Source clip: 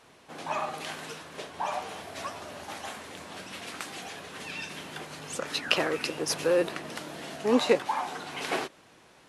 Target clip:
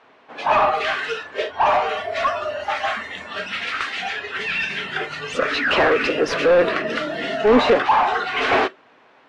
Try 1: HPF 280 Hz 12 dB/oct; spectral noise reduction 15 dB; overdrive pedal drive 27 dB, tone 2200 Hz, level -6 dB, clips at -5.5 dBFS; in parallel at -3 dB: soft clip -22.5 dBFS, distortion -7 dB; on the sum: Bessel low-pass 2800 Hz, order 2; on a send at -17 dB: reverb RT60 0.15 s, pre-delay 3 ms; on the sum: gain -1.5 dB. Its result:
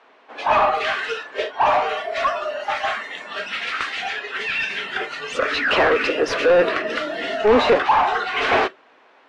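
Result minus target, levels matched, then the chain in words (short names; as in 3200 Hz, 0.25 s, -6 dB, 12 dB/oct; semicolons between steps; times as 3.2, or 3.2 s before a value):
250 Hz band -3.0 dB
spectral noise reduction 15 dB; overdrive pedal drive 27 dB, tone 2200 Hz, level -6 dB, clips at -5.5 dBFS; in parallel at -3 dB: soft clip -22.5 dBFS, distortion -7 dB; on the sum: Bessel low-pass 2800 Hz, order 2; on a send at -17 dB: reverb RT60 0.15 s, pre-delay 3 ms; on the sum: gain -1.5 dB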